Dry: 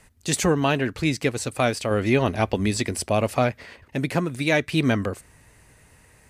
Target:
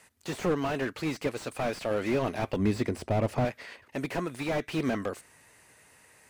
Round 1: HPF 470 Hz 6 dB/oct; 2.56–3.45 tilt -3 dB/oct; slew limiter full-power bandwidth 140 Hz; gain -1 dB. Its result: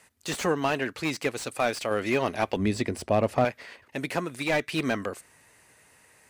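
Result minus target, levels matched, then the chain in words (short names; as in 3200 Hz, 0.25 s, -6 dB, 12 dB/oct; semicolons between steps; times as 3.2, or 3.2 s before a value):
slew limiter: distortion -9 dB
HPF 470 Hz 6 dB/oct; 2.56–3.45 tilt -3 dB/oct; slew limiter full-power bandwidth 42 Hz; gain -1 dB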